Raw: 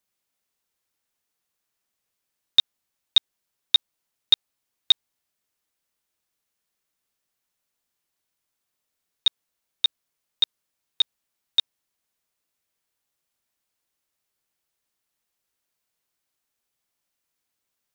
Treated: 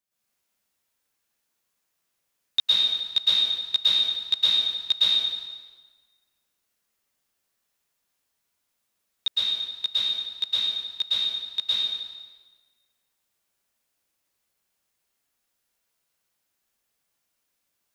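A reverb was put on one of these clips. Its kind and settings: plate-style reverb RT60 1.4 s, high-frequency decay 0.85×, pre-delay 100 ms, DRR -10 dB; trim -6.5 dB

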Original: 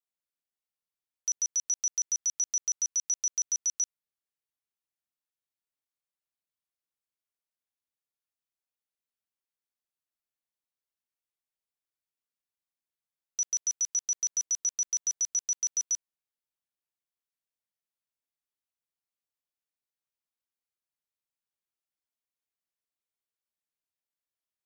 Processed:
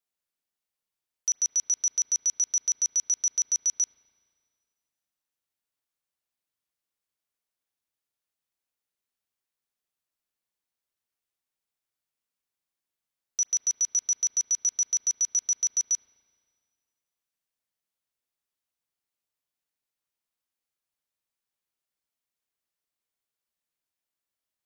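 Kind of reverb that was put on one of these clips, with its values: spring tank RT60 2 s, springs 31/35/42 ms, chirp 40 ms, DRR 14.5 dB; trim +3.5 dB

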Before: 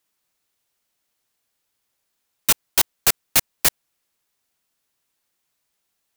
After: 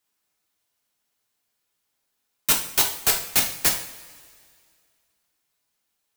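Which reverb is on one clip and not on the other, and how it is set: two-slope reverb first 0.48 s, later 2.2 s, from -18 dB, DRR 0.5 dB; trim -4 dB

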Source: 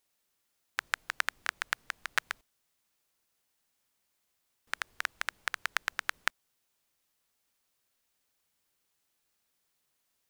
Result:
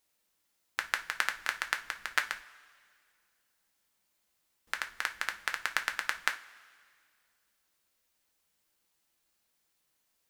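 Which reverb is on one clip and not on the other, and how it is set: two-slope reverb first 0.27 s, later 2.1 s, from -20 dB, DRR 5 dB

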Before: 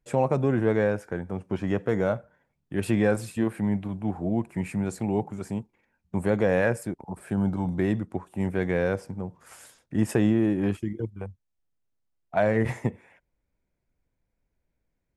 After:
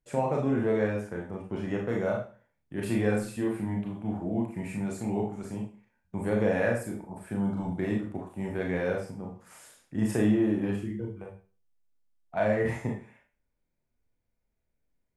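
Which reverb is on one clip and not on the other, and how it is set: Schroeder reverb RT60 0.37 s, combs from 26 ms, DRR -1 dB; trim -6.5 dB

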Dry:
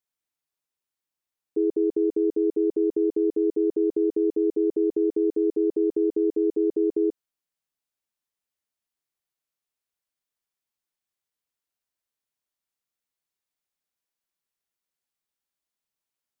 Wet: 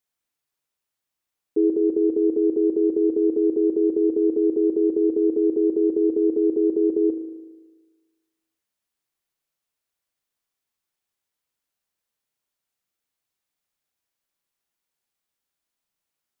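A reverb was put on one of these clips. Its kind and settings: spring tank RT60 1.3 s, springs 37 ms, chirp 40 ms, DRR 6.5 dB; trim +4 dB

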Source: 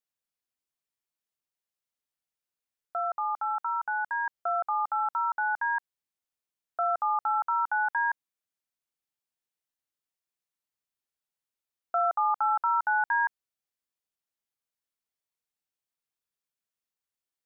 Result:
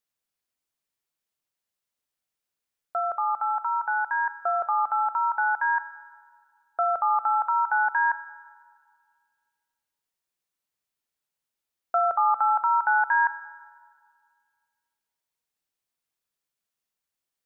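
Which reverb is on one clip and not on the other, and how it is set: algorithmic reverb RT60 2 s, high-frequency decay 0.65×, pre-delay 0 ms, DRR 14 dB; trim +4 dB

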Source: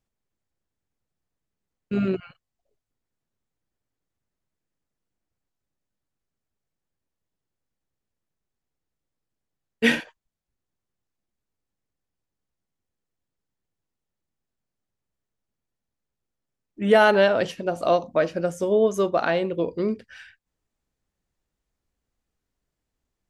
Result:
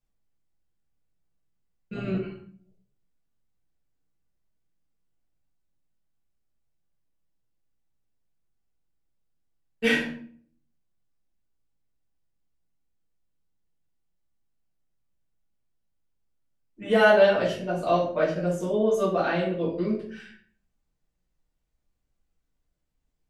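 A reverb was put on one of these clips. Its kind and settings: simulated room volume 59 m³, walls mixed, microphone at 1.6 m; trim -10 dB

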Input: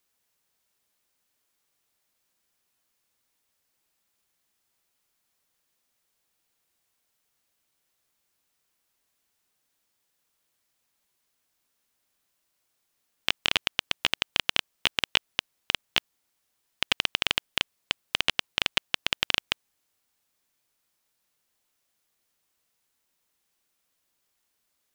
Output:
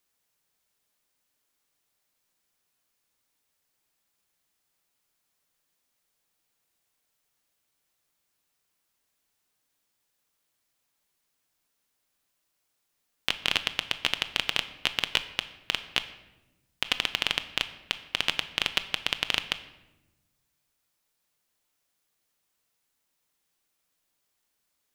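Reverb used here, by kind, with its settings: simulated room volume 470 m³, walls mixed, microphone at 0.4 m; trim -1.5 dB

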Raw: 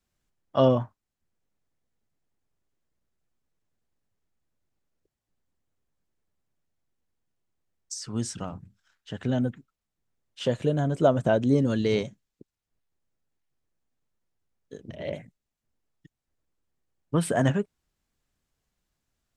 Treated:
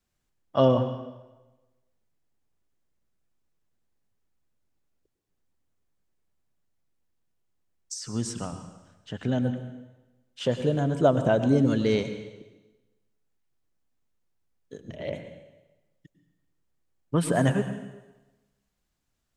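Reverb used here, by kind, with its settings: plate-style reverb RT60 1.1 s, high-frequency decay 0.95×, pre-delay 90 ms, DRR 9 dB

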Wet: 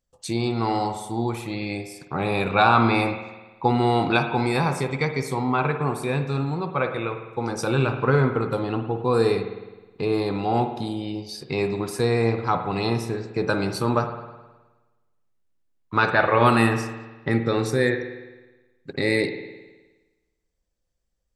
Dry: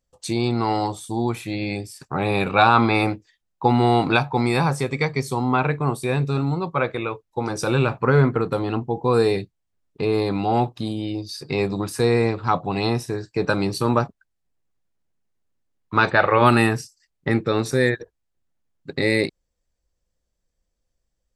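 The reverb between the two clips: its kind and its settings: spring tank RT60 1.2 s, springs 52 ms, chirp 60 ms, DRR 7 dB; trim -2.5 dB

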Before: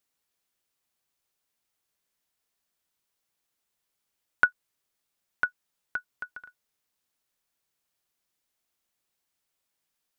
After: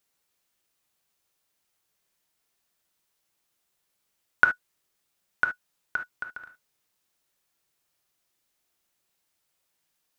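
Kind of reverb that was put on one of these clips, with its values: gated-style reverb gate 90 ms flat, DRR 5.5 dB; trim +3.5 dB

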